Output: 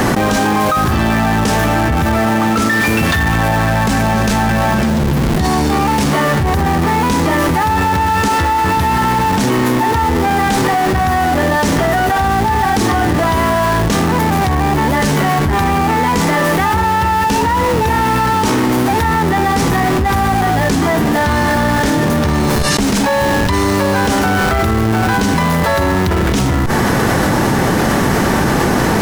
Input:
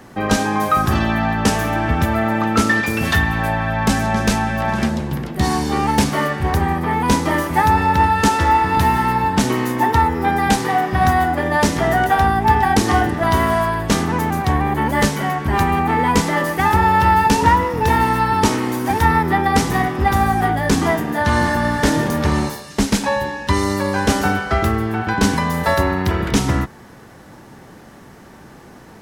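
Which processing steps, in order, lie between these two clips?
in parallel at -5.5 dB: Schmitt trigger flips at -25.5 dBFS; on the sum: level flattener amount 100%; trim -5.5 dB

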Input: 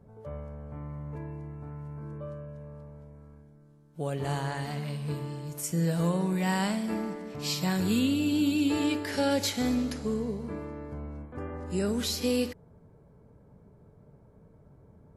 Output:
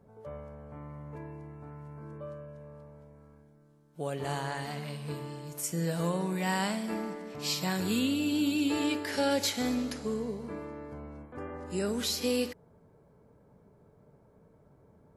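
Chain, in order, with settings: bass shelf 180 Hz -9.5 dB

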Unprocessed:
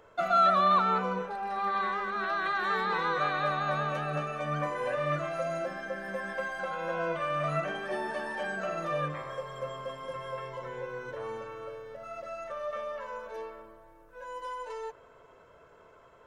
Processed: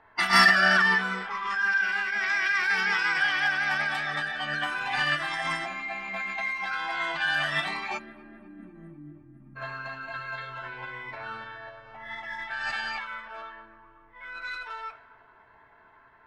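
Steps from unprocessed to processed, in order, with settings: on a send at -8 dB: reverberation RT60 0.45 s, pre-delay 3 ms; on the sum: spectral selection erased 7.98–9.56 s, 350–6400 Hz; tape echo 252 ms, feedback 65%, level -22 dB, low-pass 4.4 kHz; formant shift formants +5 st; peaking EQ 540 Hz -12.5 dB 0.42 oct; in parallel at -9.5 dB: hard clipper -20 dBFS, distortion -14 dB; on the sum: tilt shelf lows -4.5 dB, about 1.1 kHz; level-controlled noise filter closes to 1.4 kHz, open at -23.5 dBFS

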